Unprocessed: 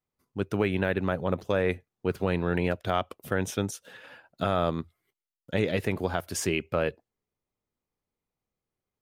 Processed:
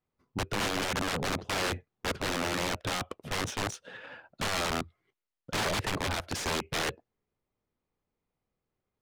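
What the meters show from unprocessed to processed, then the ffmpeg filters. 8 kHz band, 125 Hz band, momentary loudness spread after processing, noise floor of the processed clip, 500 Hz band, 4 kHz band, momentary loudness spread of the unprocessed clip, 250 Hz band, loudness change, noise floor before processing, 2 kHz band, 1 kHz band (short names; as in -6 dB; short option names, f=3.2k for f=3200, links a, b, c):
+3.0 dB, -6.0 dB, 7 LU, under -85 dBFS, -8.0 dB, +7.0 dB, 8 LU, -6.5 dB, -3.0 dB, under -85 dBFS, +1.0 dB, -0.5 dB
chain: -af "aeval=exprs='(mod(22.4*val(0)+1,2)-1)/22.4':c=same,adynamicsmooth=sensitivity=6.5:basefreq=4k,volume=3.5dB"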